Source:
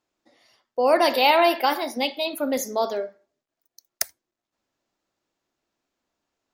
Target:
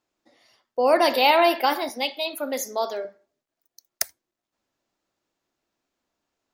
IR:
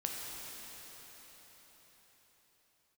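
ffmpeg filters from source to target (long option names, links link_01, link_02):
-filter_complex "[0:a]asettb=1/sr,asplit=3[link_01][link_02][link_03];[link_01]atrim=end=1.894[link_04];[link_02]atrim=start=1.89:end=3.05,asetpts=PTS-STARTPTS,afade=type=in:duration=0.004:curve=qsin,afade=type=out:start_time=1.156:duration=0.004:curve=qsin,highpass=frequency=520:poles=1[link_05];[link_03]atrim=start=3.046[link_06];[link_04][link_05]acrossfade=duration=0.004:curve1=hsin:curve2=qsin[link_07];[link_07][link_06]acrossfade=duration=0.004:curve1=qsin:curve2=hsin"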